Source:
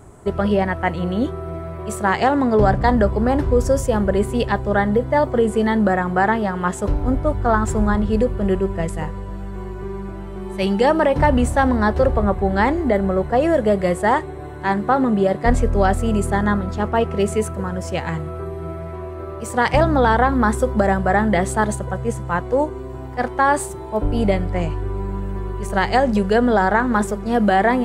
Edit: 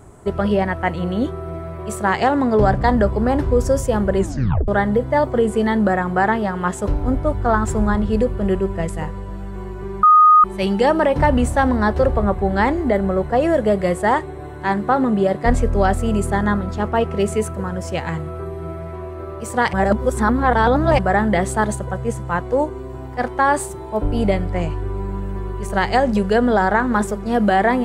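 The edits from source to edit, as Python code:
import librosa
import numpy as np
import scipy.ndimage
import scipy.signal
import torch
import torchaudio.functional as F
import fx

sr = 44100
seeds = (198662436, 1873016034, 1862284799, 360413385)

y = fx.edit(x, sr, fx.tape_stop(start_s=4.18, length_s=0.5),
    fx.bleep(start_s=10.03, length_s=0.41, hz=1240.0, db=-6.5),
    fx.reverse_span(start_s=19.73, length_s=1.26), tone=tone)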